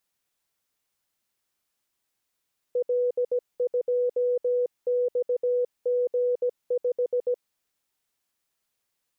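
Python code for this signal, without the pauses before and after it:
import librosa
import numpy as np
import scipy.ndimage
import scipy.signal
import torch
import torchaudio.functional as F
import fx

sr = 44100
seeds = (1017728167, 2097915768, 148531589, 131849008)

y = fx.morse(sr, text='L2XG5', wpm=17, hz=492.0, level_db=-21.0)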